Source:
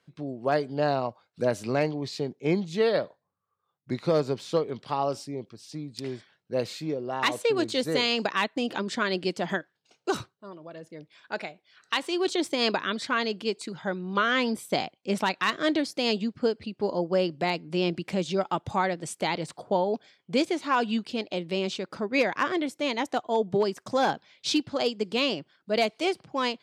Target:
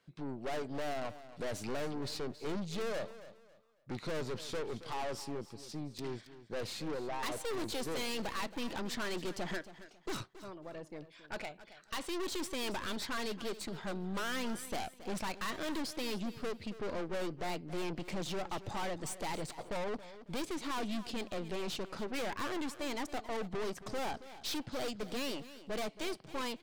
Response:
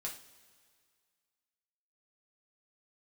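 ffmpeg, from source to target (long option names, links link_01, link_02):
-af "aeval=exprs='(tanh(63.1*val(0)+0.6)-tanh(0.6))/63.1':channel_layout=same,aecho=1:1:274|548|822:0.178|0.0498|0.0139"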